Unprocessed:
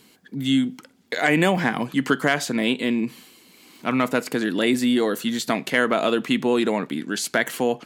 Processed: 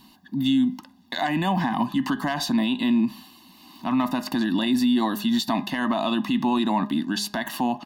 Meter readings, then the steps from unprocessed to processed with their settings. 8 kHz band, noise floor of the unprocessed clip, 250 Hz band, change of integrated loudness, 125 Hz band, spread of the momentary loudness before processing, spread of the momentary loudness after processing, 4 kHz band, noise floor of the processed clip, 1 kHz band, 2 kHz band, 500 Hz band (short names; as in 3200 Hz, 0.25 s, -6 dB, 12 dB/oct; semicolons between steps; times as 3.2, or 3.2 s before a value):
-6.0 dB, -56 dBFS, +1.0 dB, -1.5 dB, -1.5 dB, 7 LU, 5 LU, -1.0 dB, -54 dBFS, +0.5 dB, -8.0 dB, -9.5 dB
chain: low shelf 290 Hz +6.5 dB; comb 1.1 ms, depth 94%; de-hum 205 Hz, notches 10; limiter -13 dBFS, peak gain reduction 9 dB; graphic EQ 125/250/500/1000/2000/4000/8000 Hz -12/+3/-6/+6/-9/+5/-11 dB